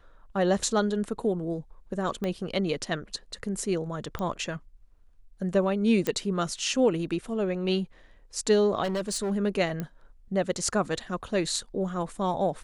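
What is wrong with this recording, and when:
0:02.24: click −19 dBFS
0:04.19: click −20 dBFS
0:06.07: click −13 dBFS
0:08.83–0:09.32: clipping −25.5 dBFS
0:09.80: click −19 dBFS

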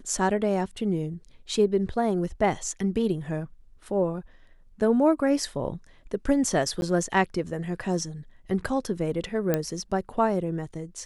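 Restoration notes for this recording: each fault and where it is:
0:06.81–0:06.82: drop-out 11 ms
0:09.54: click −10 dBFS

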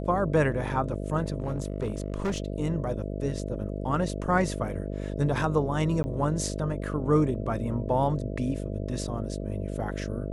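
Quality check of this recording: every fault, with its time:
mains buzz 50 Hz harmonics 13 −33 dBFS
0:01.40–0:02.40: clipping −24 dBFS
0:06.03–0:06.04: drop-out 10 ms

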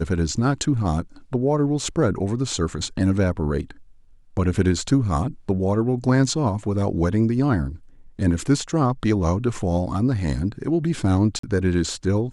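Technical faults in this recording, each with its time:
0:11.39–0:11.43: drop-out 44 ms

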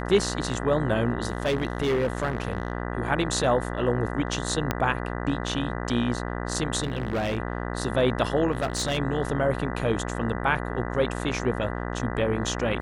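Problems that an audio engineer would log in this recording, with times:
mains buzz 60 Hz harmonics 33 −31 dBFS
0:01.28–0:02.72: clipping −20 dBFS
0:04.71: click −9 dBFS
0:06.83–0:07.38: clipping −23 dBFS
0:08.51–0:08.99: clipping −21.5 dBFS

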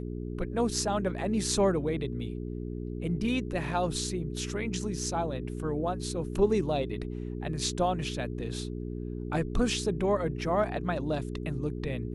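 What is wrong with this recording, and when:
mains hum 60 Hz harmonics 7 −36 dBFS

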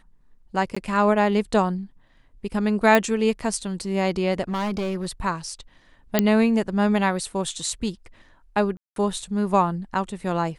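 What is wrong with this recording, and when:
0:00.75–0:00.77: drop-out 15 ms
0:02.95: click −5 dBFS
0:04.42–0:05.06: clipping −22.5 dBFS
0:06.19: click −3 dBFS
0:08.77–0:08.96: drop-out 192 ms

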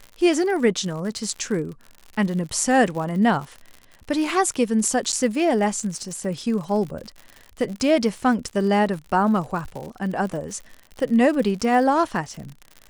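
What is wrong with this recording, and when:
surface crackle 81 per second −31 dBFS
0:05.12–0:05.13: drop-out 8.3 ms

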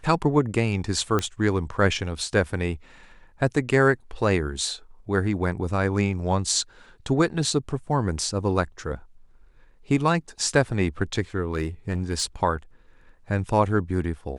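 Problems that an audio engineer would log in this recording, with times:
0:01.19: click −11 dBFS
0:11.51–0:12.24: clipping −19.5 dBFS

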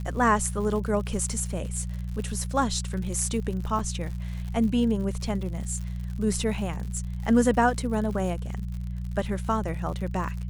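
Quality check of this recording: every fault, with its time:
surface crackle 99 per second −35 dBFS
mains hum 60 Hz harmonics 3 −32 dBFS
0:03.79: drop-out 4.7 ms

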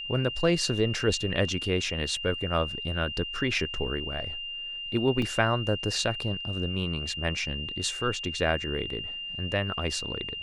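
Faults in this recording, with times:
whistle 2,800 Hz −34 dBFS
0:05.22: drop-out 2.6 ms

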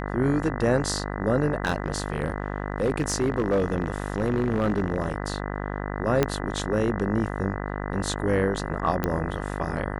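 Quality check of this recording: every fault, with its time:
mains buzz 50 Hz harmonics 40 −31 dBFS
0:01.64–0:05.16: clipping −18 dBFS
0:06.23: click −7 dBFS
0:09.04: click −11 dBFS

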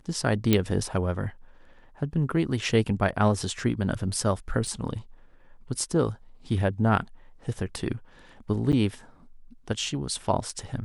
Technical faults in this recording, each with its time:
0:00.53: click −7 dBFS
0:04.67: drop-out 3.2 ms
0:08.72–0:08.73: drop-out 8.5 ms

